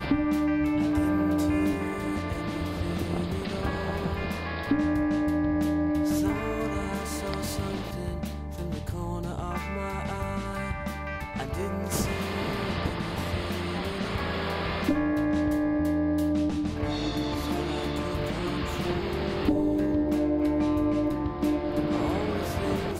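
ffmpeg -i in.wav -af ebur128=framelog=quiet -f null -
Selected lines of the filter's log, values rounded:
Integrated loudness:
  I:         -28.5 LUFS
  Threshold: -38.5 LUFS
Loudness range:
  LRA:         5.9 LU
  Threshold: -48.8 LUFS
  LRA low:   -32.7 LUFS
  LRA high:  -26.8 LUFS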